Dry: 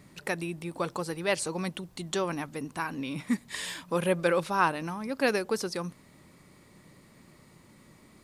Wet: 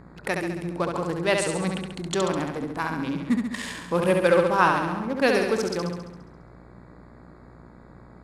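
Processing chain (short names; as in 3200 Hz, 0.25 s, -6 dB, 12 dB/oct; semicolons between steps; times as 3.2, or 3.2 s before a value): Wiener smoothing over 15 samples; LPF 12000 Hz 12 dB/oct; flutter echo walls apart 11.7 m, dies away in 0.94 s; buzz 60 Hz, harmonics 28, -55 dBFS -4 dB/oct; gain +4.5 dB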